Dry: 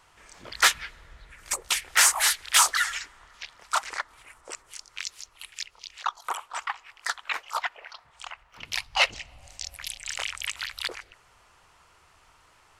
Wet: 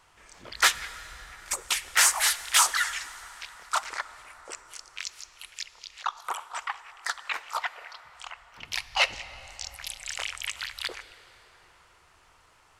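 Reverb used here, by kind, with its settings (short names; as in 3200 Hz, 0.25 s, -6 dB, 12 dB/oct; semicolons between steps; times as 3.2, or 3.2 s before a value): plate-style reverb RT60 4.9 s, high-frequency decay 0.6×, DRR 14 dB; gain -1.5 dB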